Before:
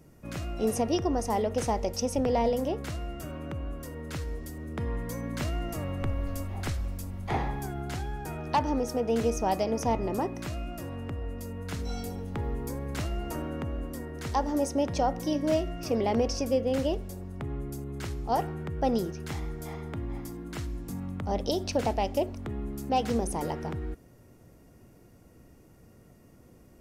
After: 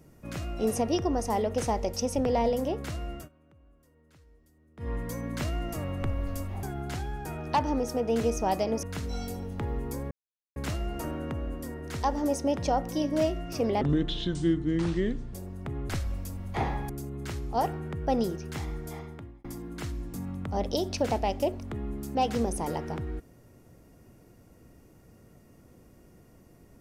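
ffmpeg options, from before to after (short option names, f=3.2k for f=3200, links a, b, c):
-filter_complex "[0:a]asplit=11[a][b][c][d][e][f][g][h][i][j][k];[a]atrim=end=3.29,asetpts=PTS-STARTPTS,afade=t=out:st=3.12:d=0.17:c=qsin:silence=0.0668344[l];[b]atrim=start=3.29:end=4.77,asetpts=PTS-STARTPTS,volume=-23.5dB[m];[c]atrim=start=4.77:end=6.632,asetpts=PTS-STARTPTS,afade=t=in:d=0.17:c=qsin:silence=0.0668344[n];[d]atrim=start=7.628:end=9.832[o];[e]atrim=start=11.588:end=12.87,asetpts=PTS-STARTPTS,afade=t=out:st=1.278:d=0.004:c=hsin,apad=pad_dur=0.45[p];[f]atrim=start=12.87:end=16.124,asetpts=PTS-STARTPTS,afade=t=in:d=0.004:c=hsin[q];[g]atrim=start=16.12:end=17.08,asetpts=PTS-STARTPTS,asetrate=27783,aresample=44100[r];[h]atrim=start=17.076:end=17.642[s];[i]atrim=start=6.628:end=7.632[t];[j]atrim=start=17.638:end=20.19,asetpts=PTS-STARTPTS,afade=t=out:st=1.992:d=0.56[u];[k]atrim=start=20.19,asetpts=PTS-STARTPTS,afade=t=in:d=0.004:c=hsin[v];[l][m][n]concat=n=3:v=0:a=1[w];[w][o]acrossfade=d=0.004:c1=hsin:c2=hsin[x];[p][q]concat=n=2:v=0:a=1[y];[x][y]acrossfade=d=0.004:c1=hsin:c2=hsin[z];[z][r]acrossfade=d=0.004:c1=hsin:c2=hsin[aa];[aa][s]acrossfade=d=0.004:c1=hsin:c2=hsin[ab];[ab][t]acrossfade=d=0.004:c1=hsin:c2=hsin[ac];[u][v]concat=n=2:v=0:a=1[ad];[ac][ad]acrossfade=d=0.004:c1=hsin:c2=hsin"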